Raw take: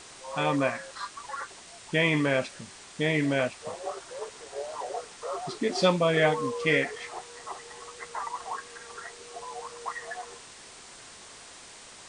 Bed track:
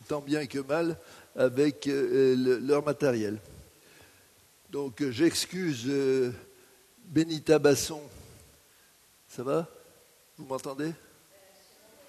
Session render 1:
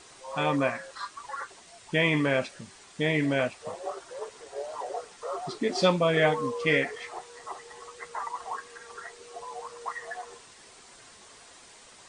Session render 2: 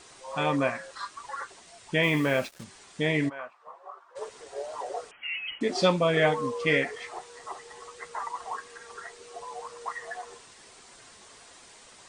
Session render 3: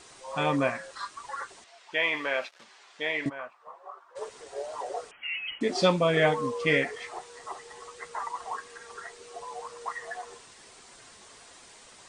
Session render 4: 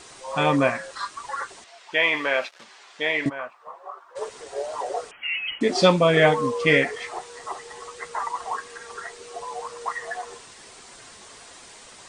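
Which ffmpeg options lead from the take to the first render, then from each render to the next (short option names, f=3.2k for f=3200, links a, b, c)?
-af "afftdn=nr=6:nf=-48"
-filter_complex "[0:a]asettb=1/sr,asplit=3[a][b][c];[a]atrim=end=2.034[d];[b]atrim=start=2.03:end=2.64,asetpts=PTS-STARTPTS,afade=t=in:d=0.004:c=qsin,afade=t=out:st=0.606:d=0.004:c=qsin,acrusher=bits=6:mix=0:aa=0.5[e];[c]atrim=start=2.636[f];[d][e]acrossfade=d=0.004:c1=hsin:c2=qsin[g];[g][f]acrossfade=d=0.004:c1=qsin:c2=hsin,asplit=3[h][i][j];[h]afade=t=out:st=3.28:d=0.02[k];[i]bandpass=f=1.1k:t=q:w=3.9,afade=t=in:st=3.28:d=0.02,afade=t=out:st=4.15:d=0.02[l];[j]afade=t=in:st=4.15:d=0.02[m];[k][l][m]amix=inputs=3:normalize=0,asettb=1/sr,asplit=3[n][o][p];[n]atrim=end=5.114[q];[o]atrim=start=5.11:end=5.61,asetpts=PTS-STARTPTS,afade=t=in:d=0.004:c=qsin,afade=t=out:st=0.496:d=0.004:c=qsin,lowpass=f=2.8k:t=q:w=0.5098,lowpass=f=2.8k:t=q:w=0.6013,lowpass=f=2.8k:t=q:w=0.9,lowpass=f=2.8k:t=q:w=2.563,afreqshift=-3300[r];[p]atrim=start=5.606[s];[q][r]acrossfade=d=0.004:c1=hsin:c2=qsin[t];[t][s]acrossfade=d=0.004:c1=qsin:c2=hsin"
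-filter_complex "[0:a]asettb=1/sr,asplit=3[a][b][c];[a]atrim=end=1.644[d];[b]atrim=start=1.64:end=3.26,asetpts=PTS-STARTPTS,afade=t=in:d=0.004:c=qsin,afade=t=out:st=1.616:d=0.004:c=qsin,highpass=640,lowpass=4.5k[e];[c]atrim=start=3.256[f];[d][e]acrossfade=d=0.004:c1=hsin:c2=qsin[g];[g][f]acrossfade=d=0.004:c1=qsin:c2=hsin"
-af "volume=6dB"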